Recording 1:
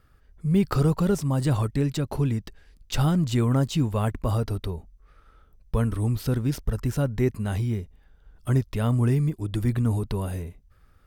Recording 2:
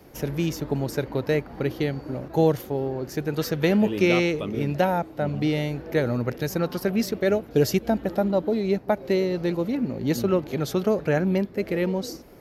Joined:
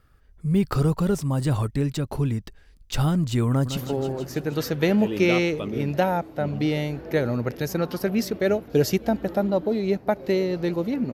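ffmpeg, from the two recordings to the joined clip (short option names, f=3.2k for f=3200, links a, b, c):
-filter_complex "[0:a]apad=whole_dur=11.13,atrim=end=11.13,atrim=end=3.772[a];[1:a]atrim=start=2.578:end=9.94[b];[a][b]acrossfade=d=0.004:c1=hsin:c2=hsin,asplit=2[c][d];[d]afade=t=in:st=3.49:d=0.01,afade=t=out:st=3.77:d=0.01,aecho=0:1:160|320|480|640|800|960|1120|1280|1440|1600|1760|1920:0.316228|0.237171|0.177878|0.133409|0.100056|0.0750423|0.0562817|0.0422113|0.0316585|0.0237439|0.0178079|0.0133559[e];[c][e]amix=inputs=2:normalize=0"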